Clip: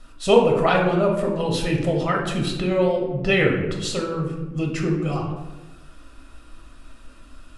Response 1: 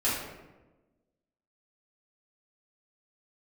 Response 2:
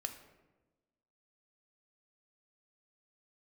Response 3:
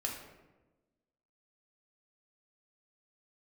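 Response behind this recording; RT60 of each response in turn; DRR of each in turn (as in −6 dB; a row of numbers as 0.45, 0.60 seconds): 3; 1.1, 1.2, 1.1 seconds; −10.0, 6.5, −0.5 decibels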